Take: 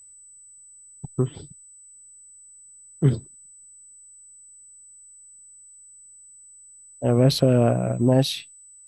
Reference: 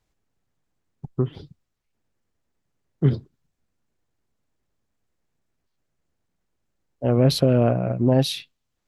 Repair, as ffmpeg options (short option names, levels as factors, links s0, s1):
-af "bandreject=f=8000:w=30"